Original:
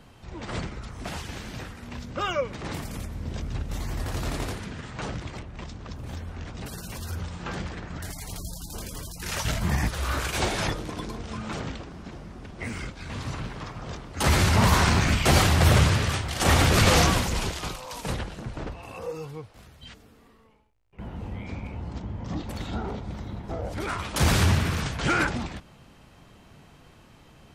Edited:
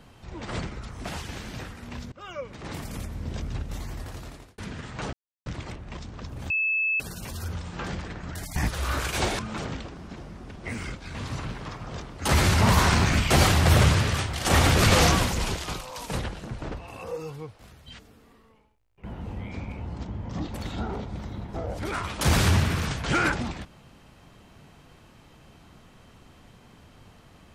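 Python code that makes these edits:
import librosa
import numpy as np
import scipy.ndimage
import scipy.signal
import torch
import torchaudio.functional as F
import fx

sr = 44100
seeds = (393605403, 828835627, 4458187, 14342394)

y = fx.edit(x, sr, fx.fade_in_from(start_s=2.12, length_s=0.84, floor_db=-23.0),
    fx.fade_out_span(start_s=3.46, length_s=1.12),
    fx.insert_silence(at_s=5.13, length_s=0.33),
    fx.bleep(start_s=6.17, length_s=0.5, hz=2610.0, db=-22.0),
    fx.cut(start_s=8.23, length_s=1.53),
    fx.cut(start_s=10.59, length_s=0.75), tone=tone)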